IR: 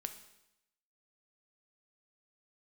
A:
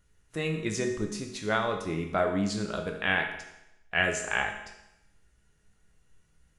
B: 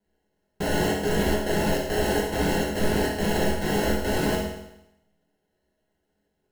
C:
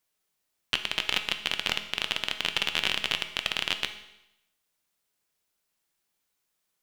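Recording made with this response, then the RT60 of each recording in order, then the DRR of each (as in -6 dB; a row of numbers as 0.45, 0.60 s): C; 0.85, 0.85, 0.85 s; 2.5, -5.5, 7.0 dB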